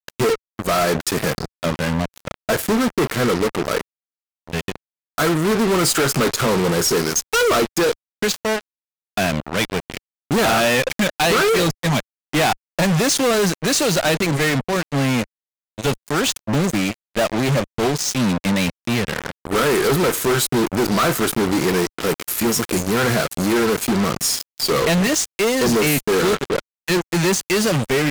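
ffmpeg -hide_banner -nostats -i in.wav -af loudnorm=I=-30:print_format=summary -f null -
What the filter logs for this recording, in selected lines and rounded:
Input Integrated:    -19.3 LUFS
Input True Peak:     -11.7 dBTP
Input LRA:             3.4 LU
Input Threshold:     -29.4 LUFS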